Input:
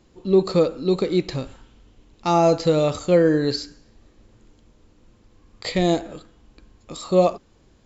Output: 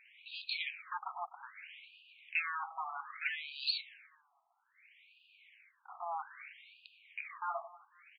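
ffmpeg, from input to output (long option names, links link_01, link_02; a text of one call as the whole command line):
ffmpeg -i in.wav -af "firequalizer=gain_entry='entry(340,0);entry(1200,-14);entry(2300,14);entry(4200,-4)':delay=0.05:min_phase=1,aresample=11025,asoftclip=type=tanh:threshold=-26dB,aresample=44100,asetrate=42336,aresample=44100,aecho=1:1:250|500|750:0.112|0.0415|0.0154,afftfilt=real='re*between(b*sr/1024,920*pow(3500/920,0.5+0.5*sin(2*PI*0.62*pts/sr))/1.41,920*pow(3500/920,0.5+0.5*sin(2*PI*0.62*pts/sr))*1.41)':imag='im*between(b*sr/1024,920*pow(3500/920,0.5+0.5*sin(2*PI*0.62*pts/sr))/1.41,920*pow(3500/920,0.5+0.5*sin(2*PI*0.62*pts/sr))*1.41)':win_size=1024:overlap=0.75,volume=2.5dB" out.wav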